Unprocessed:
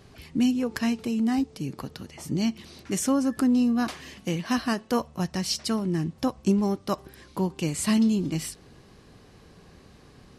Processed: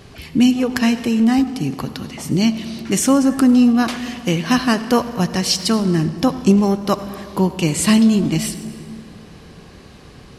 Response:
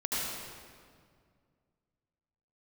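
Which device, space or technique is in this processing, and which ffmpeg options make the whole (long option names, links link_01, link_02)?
saturated reverb return: -filter_complex "[0:a]asplit=2[link_01][link_02];[1:a]atrim=start_sample=2205[link_03];[link_02][link_03]afir=irnorm=-1:irlink=0,asoftclip=type=tanh:threshold=-15dB,volume=-16dB[link_04];[link_01][link_04]amix=inputs=2:normalize=0,equalizer=frequency=2800:width=1.5:gain=2.5,volume=8.5dB"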